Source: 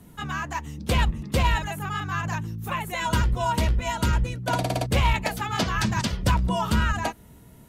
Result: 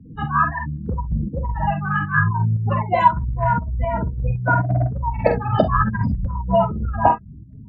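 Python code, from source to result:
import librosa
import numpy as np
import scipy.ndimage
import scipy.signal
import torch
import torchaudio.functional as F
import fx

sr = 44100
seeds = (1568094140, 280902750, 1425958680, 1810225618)

p1 = fx.peak_eq(x, sr, hz=100.0, db=8.0, octaves=2.3)
p2 = fx.spec_gate(p1, sr, threshold_db=-15, keep='strong')
p3 = 10.0 ** (-18.5 / 20.0) * np.tanh(p2 / 10.0 ** (-18.5 / 20.0))
p4 = p2 + (p3 * librosa.db_to_amplitude(-6.0))
p5 = scipy.signal.sosfilt(scipy.signal.butter(2, 5300.0, 'lowpass', fs=sr, output='sos'), p4)
p6 = p5 + fx.room_early_taps(p5, sr, ms=(46, 65), db=(-6.5, -13.0), dry=0)
p7 = fx.over_compress(p6, sr, threshold_db=-18.0, ratio=-1.0)
p8 = fx.high_shelf(p7, sr, hz=3300.0, db=-10.5)
p9 = fx.volume_shaper(p8, sr, bpm=117, per_beat=2, depth_db=-6, release_ms=89.0, shape='slow start')
p10 = fx.bell_lfo(p9, sr, hz=0.74, low_hz=430.0, high_hz=2000.0, db=15)
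y = p10 * librosa.db_to_amplitude(-2.0)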